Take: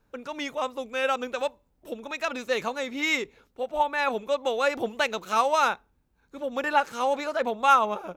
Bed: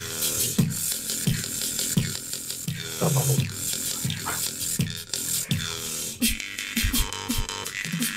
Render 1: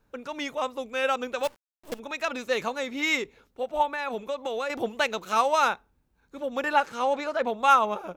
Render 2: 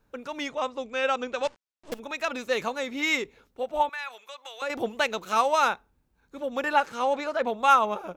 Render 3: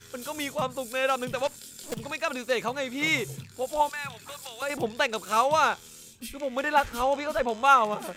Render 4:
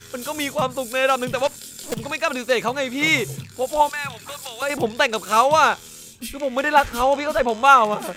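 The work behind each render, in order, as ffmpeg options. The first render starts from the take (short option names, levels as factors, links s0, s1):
-filter_complex "[0:a]asplit=3[s0][s1][s2];[s0]afade=t=out:st=1.43:d=0.02[s3];[s1]acrusher=bits=6:dc=4:mix=0:aa=0.000001,afade=t=in:st=1.43:d=0.02,afade=t=out:st=1.98:d=0.02[s4];[s2]afade=t=in:st=1.98:d=0.02[s5];[s3][s4][s5]amix=inputs=3:normalize=0,asettb=1/sr,asplit=3[s6][s7][s8];[s6]atrim=end=3.854[s9];[s7]atrim=start=3.85:end=4.7,asetpts=PTS-STARTPTS,afade=t=in:d=0.004:c=qsin,afade=t=out:st=0.846:d=0.004:c=qsin,acompressor=threshold=0.0501:ratio=6:attack=3.2:release=140:knee=1:detection=peak[s10];[s8]atrim=start=4.696[s11];[s9][s10]acrossfade=d=0.004:c1=hsin:c2=qsin[s12];[s12][s11]acrossfade=d=0.004:c1=qsin:c2=hsin,asettb=1/sr,asplit=3[s13][s14][s15];[s13]atrim=end=6.854[s16];[s14]atrim=start=6.85:end=7.5,asetpts=PTS-STARTPTS,afade=t=in:d=0.004:c=qsin,afade=t=out:st=0.646:d=0.004:c=qsin,highshelf=f=8000:g=-9.5[s17];[s15]atrim=start=7.496[s18];[s16][s17]acrossfade=d=0.004:c1=hsin:c2=qsin[s19];[s19][s18]acrossfade=d=0.004:c1=qsin:c2=hsin"
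-filter_complex "[0:a]asettb=1/sr,asplit=3[s0][s1][s2];[s0]atrim=end=0.484[s3];[s1]atrim=start=0.48:end=1.92,asetpts=PTS-STARTPTS,afade=t=in:d=0.004:c=qsin,afade=t=out:st=1.436:d=0.004:c=qsin,lowpass=f=7500:w=0.5412,lowpass=f=7500:w=1.3066[s4];[s2]atrim=start=1.916[s5];[s3][s4]acrossfade=d=0.004:c1=hsin:c2=qsin[s6];[s6][s5]acrossfade=d=0.004:c1=qsin:c2=hsin,asettb=1/sr,asplit=3[s7][s8][s9];[s7]atrim=end=3.894[s10];[s8]atrim=start=3.89:end=4.62,asetpts=PTS-STARTPTS,afade=t=in:d=0.004:c=qsin,afade=t=out:st=0.726:d=0.004:c=qsin,highpass=1400[s11];[s9]atrim=start=4.616[s12];[s10][s11]acrossfade=d=0.004:c1=hsin:c2=qsin[s13];[s13][s12]acrossfade=d=0.004:c1=qsin:c2=hsin"
-filter_complex "[1:a]volume=0.141[s0];[0:a][s0]amix=inputs=2:normalize=0"
-af "volume=2.24,alimiter=limit=0.794:level=0:latency=1"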